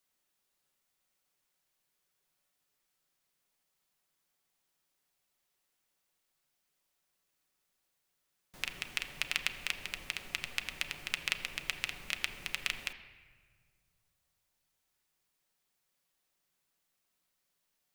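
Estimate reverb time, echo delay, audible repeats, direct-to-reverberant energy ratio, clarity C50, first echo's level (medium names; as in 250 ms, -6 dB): 1.7 s, no echo, no echo, 5.5 dB, 11.0 dB, no echo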